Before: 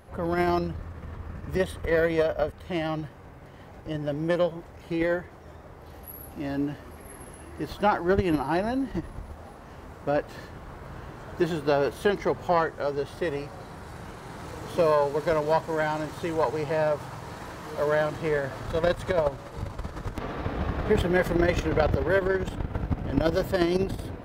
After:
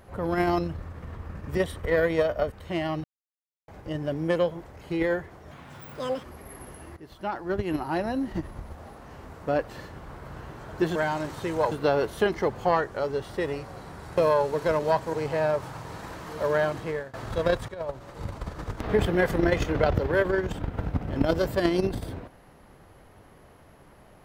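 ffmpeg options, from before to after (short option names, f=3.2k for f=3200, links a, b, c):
-filter_complex "[0:a]asplit=13[a][b][c][d][e][f][g][h][i][j][k][l][m];[a]atrim=end=3.04,asetpts=PTS-STARTPTS,afade=t=out:st=3.036:d=0.004:c=hsin[n];[b]atrim=start=3.04:end=3.68,asetpts=PTS-STARTPTS,volume=0[o];[c]atrim=start=3.68:end=5.514,asetpts=PTS-STARTPTS,afade=t=in:d=0.004:c=hsin[p];[d]atrim=start=5.51:end=6.83,asetpts=PTS-STARTPTS,asetrate=80262,aresample=44100[q];[e]atrim=start=6.826:end=7.56,asetpts=PTS-STARTPTS,afade=t=out:st=0.73:d=0.004:c=hsin:silence=0.16788[r];[f]atrim=start=7.56:end=11.552,asetpts=PTS-STARTPTS,afade=t=in:d=1.35:silence=0.16788[s];[g]atrim=start=15.748:end=16.512[t];[h]atrim=start=11.548:end=14.012[u];[i]atrim=start=14.788:end=15.752[v];[j]atrim=start=16.508:end=18.51,asetpts=PTS-STARTPTS,afade=t=out:st=1.462:d=0.54:c=qsin:silence=0.0841395[w];[k]atrim=start=18.51:end=19.06,asetpts=PTS-STARTPTS,afade=t=in:d=0.004:c=hsin:silence=0.0841395,afade=t=out:st=0.546:d=0.004:c=hsin:silence=0.141254[x];[l]atrim=start=19.06:end=20.232,asetpts=PTS-STARTPTS,afade=t=in:d=0.6:silence=0.141254[y];[m]atrim=start=20.818[z];[n][o][p]concat=n=3:v=0:a=1[aa];[aa][q]acrossfade=d=0.004:c1=hsin:c2=hsin[ab];[r][s]concat=n=2:v=0:a=1[ac];[ab][ac]acrossfade=d=0.004:c1=hsin:c2=hsin[ad];[ad][t]acrossfade=d=0.004:c1=hsin:c2=hsin[ae];[ae][u]acrossfade=d=0.004:c1=hsin:c2=hsin[af];[af][v]acrossfade=d=0.004:c1=hsin:c2=hsin[ag];[w][x][y]concat=n=3:v=0:a=1[ah];[ag][ah]acrossfade=d=0.004:c1=hsin:c2=hsin[ai];[ai][z]acrossfade=d=0.004:c1=hsin:c2=hsin"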